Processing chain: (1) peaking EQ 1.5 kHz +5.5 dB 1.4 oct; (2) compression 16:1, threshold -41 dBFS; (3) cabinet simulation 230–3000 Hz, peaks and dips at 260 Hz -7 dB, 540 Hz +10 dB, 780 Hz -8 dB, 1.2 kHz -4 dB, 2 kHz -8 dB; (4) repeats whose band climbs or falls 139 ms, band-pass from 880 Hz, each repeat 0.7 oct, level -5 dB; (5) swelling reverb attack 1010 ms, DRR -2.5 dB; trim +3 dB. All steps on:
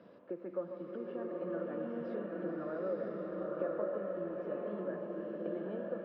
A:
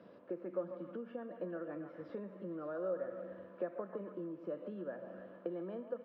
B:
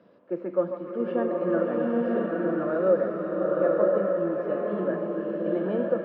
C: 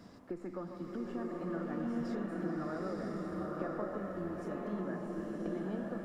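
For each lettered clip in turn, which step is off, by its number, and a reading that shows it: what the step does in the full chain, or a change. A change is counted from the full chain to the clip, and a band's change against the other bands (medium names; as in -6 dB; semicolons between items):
5, echo-to-direct 3.5 dB to -7.0 dB; 2, mean gain reduction 9.5 dB; 3, crest factor change -2.0 dB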